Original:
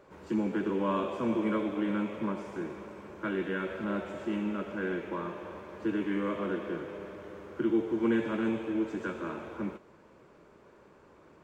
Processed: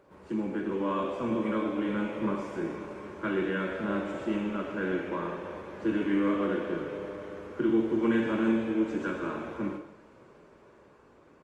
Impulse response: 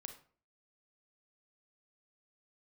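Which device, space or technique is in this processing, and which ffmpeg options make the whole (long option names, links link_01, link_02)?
speakerphone in a meeting room: -filter_complex "[0:a]asettb=1/sr,asplit=3[link_01][link_02][link_03];[link_01]atrim=end=1.944[link_04];[link_02]atrim=start=1.94:end=3.23,asetpts=PTS-STARTPTS,afade=type=in:duration=0.004:curve=qsin,afade=type=out:start_time=1.286:duration=0.004:curve=qsin,asplit=2[link_05][link_06];[link_06]adelay=24,volume=-8.5dB[link_07];[link_05][link_07]amix=inputs=2:normalize=0,atrim=end_sample=56889[link_08];[link_03]atrim=start=3.226[link_09];[link_04][link_08]acrossfade=duration=0.004:curve1=hsin:curve2=qsin[link_10];[link_10][link_09]acrossfade=duration=0.004:curve1=qsin:curve2=hsin,aecho=1:1:130|260|390:0.126|0.0466|0.0172[link_11];[1:a]atrim=start_sample=2205[link_12];[link_11][link_12]afir=irnorm=-1:irlink=0,asplit=2[link_13][link_14];[link_14]adelay=140,highpass=300,lowpass=3400,asoftclip=type=hard:threshold=-31dB,volume=-14dB[link_15];[link_13][link_15]amix=inputs=2:normalize=0,dynaudnorm=framelen=320:gausssize=11:maxgain=4dB,volume=3.5dB" -ar 48000 -c:a libopus -b:a 32k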